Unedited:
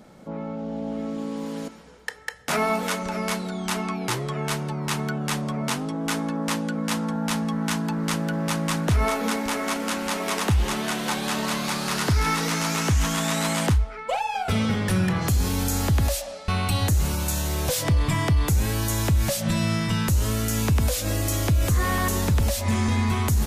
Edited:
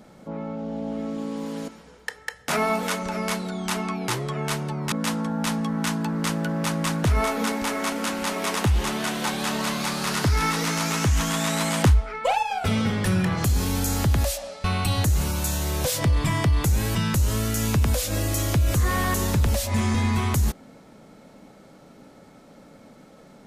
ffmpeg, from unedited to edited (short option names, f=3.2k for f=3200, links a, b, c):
-filter_complex "[0:a]asplit=5[a][b][c][d][e];[a]atrim=end=4.922[f];[b]atrim=start=6.758:end=13.682[g];[c]atrim=start=13.678:end=14.272,asetpts=PTS-STARTPTS,volume=3.5dB[h];[d]atrim=start=14.268:end=18.792[i];[e]atrim=start=19.888[j];[f][g]acrossfade=d=0.004:c1=hsin:c2=hsin[k];[k][h]acrossfade=d=0.004:c1=hsin:c2=hsin[l];[l][i]acrossfade=d=0.004:c1=hsin:c2=hsin[m];[m][j]acrossfade=d=0.004:c1=hsin:c2=hsin"